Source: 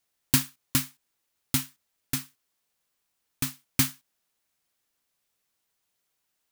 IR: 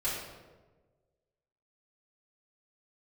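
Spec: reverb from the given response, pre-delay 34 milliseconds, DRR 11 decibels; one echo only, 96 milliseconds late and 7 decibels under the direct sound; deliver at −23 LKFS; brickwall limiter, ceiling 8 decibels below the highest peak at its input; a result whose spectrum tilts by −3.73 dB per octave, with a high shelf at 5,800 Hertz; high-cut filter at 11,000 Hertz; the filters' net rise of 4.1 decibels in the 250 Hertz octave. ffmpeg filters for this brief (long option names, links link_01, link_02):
-filter_complex "[0:a]lowpass=11000,equalizer=frequency=250:width_type=o:gain=4.5,highshelf=frequency=5800:gain=-6.5,alimiter=limit=-16dB:level=0:latency=1,aecho=1:1:96:0.447,asplit=2[link_01][link_02];[1:a]atrim=start_sample=2205,adelay=34[link_03];[link_02][link_03]afir=irnorm=-1:irlink=0,volume=-17.5dB[link_04];[link_01][link_04]amix=inputs=2:normalize=0,volume=11.5dB"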